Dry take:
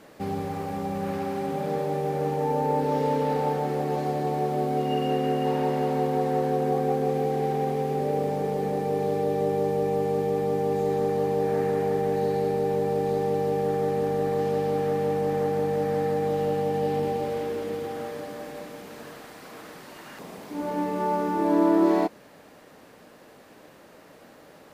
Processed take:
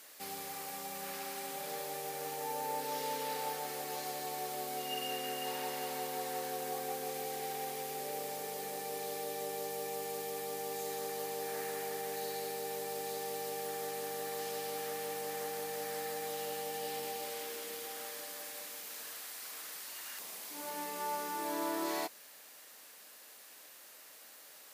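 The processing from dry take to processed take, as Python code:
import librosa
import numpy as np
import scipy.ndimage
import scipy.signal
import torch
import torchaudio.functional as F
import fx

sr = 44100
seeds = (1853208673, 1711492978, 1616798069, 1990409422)

y = np.diff(x, prepend=0.0)
y = y * librosa.db_to_amplitude(7.5)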